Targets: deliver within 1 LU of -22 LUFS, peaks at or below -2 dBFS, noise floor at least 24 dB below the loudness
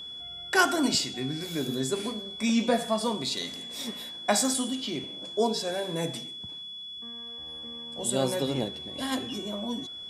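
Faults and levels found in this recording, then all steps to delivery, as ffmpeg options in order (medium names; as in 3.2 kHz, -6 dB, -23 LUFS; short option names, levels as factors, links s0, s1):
steady tone 3.4 kHz; tone level -38 dBFS; loudness -29.5 LUFS; peak level -7.5 dBFS; loudness target -22.0 LUFS
-> -af "bandreject=f=3400:w=30"
-af "volume=2.37,alimiter=limit=0.794:level=0:latency=1"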